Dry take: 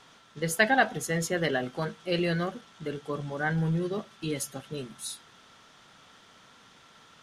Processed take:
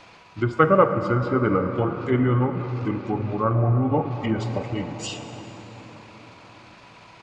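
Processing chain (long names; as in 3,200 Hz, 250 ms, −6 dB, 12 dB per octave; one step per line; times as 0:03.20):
treble cut that deepens with the level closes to 1,800 Hz, closed at −26 dBFS
hum removal 186.1 Hz, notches 7
pitch shifter −5.5 semitones
gain on a spectral selection 0:03.56–0:05.40, 440–910 Hz +11 dB
convolution reverb RT60 5.2 s, pre-delay 38 ms, DRR 7.5 dB
level +7.5 dB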